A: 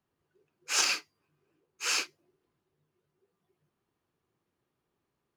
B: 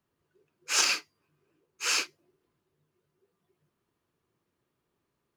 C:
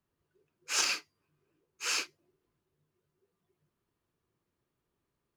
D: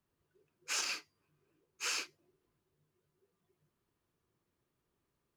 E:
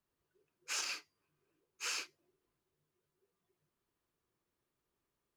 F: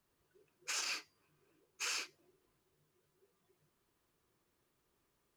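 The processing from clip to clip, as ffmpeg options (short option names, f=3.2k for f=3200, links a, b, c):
-af "bandreject=f=780:w=13,volume=2dB"
-af "lowshelf=f=71:g=10,volume=-4.5dB"
-af "acompressor=threshold=-33dB:ratio=6"
-af "equalizer=f=120:w=0.52:g=-5.5,volume=-2.5dB"
-af "alimiter=level_in=11.5dB:limit=-24dB:level=0:latency=1:release=183,volume=-11.5dB,volume=7dB"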